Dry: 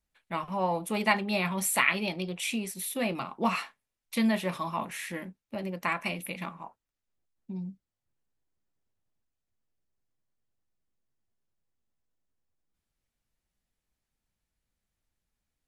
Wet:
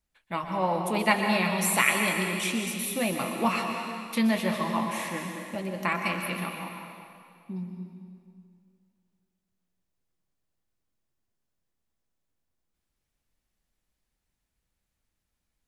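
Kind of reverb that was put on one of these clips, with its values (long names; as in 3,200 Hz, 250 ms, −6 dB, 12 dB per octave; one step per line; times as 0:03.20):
dense smooth reverb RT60 2.3 s, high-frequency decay 0.95×, pre-delay 110 ms, DRR 3 dB
level +1.5 dB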